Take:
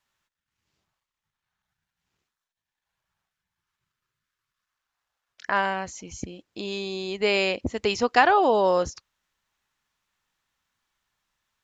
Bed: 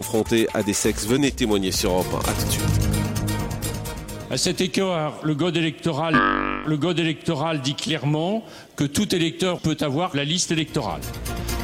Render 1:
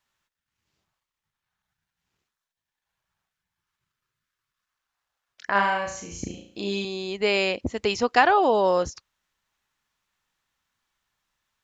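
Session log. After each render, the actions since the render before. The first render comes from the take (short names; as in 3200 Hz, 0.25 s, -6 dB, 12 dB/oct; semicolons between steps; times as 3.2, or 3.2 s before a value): 5.51–6.85 flutter echo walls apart 6 m, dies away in 0.52 s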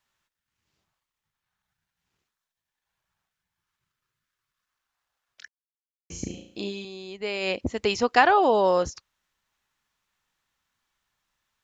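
5.48–6.1 mute; 6.61–7.52 dip -8 dB, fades 0.12 s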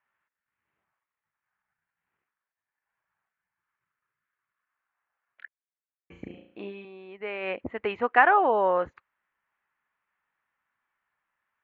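inverse Chebyshev low-pass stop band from 5000 Hz, stop band 50 dB; tilt +3.5 dB/oct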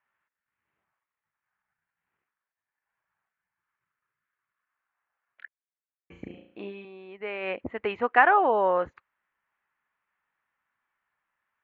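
nothing audible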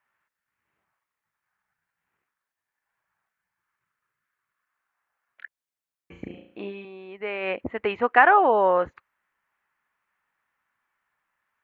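gain +3.5 dB; limiter -2 dBFS, peak gain reduction 1.5 dB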